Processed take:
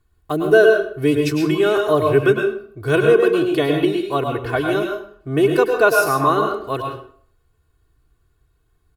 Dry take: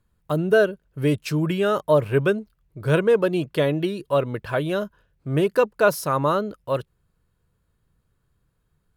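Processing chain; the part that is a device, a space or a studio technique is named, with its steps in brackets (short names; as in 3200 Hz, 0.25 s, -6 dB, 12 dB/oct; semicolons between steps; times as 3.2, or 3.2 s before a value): microphone above a desk (comb 2.7 ms, depth 77%; reverb RT60 0.55 s, pre-delay 97 ms, DRR 2 dB); gain +1.5 dB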